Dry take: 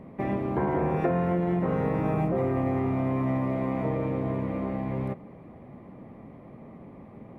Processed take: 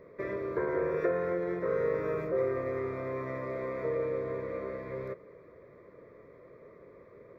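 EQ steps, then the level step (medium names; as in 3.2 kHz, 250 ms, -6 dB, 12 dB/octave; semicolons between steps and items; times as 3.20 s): resonant low shelf 330 Hz -11.5 dB, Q 3; static phaser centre 2.9 kHz, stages 6; 0.0 dB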